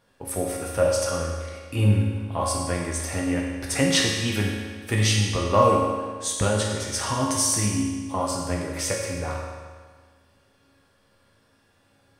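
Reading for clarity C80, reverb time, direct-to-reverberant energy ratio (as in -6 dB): 2.5 dB, 1.6 s, -3.0 dB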